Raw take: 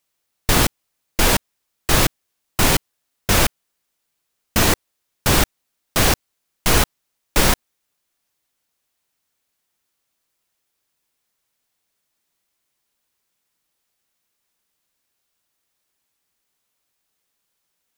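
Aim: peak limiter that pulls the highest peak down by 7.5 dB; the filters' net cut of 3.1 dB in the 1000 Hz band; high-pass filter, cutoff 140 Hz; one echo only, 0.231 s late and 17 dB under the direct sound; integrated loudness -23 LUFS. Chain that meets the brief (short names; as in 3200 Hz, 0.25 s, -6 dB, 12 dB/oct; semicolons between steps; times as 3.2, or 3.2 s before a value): HPF 140 Hz; bell 1000 Hz -4 dB; limiter -10.5 dBFS; echo 0.231 s -17 dB; gain +0.5 dB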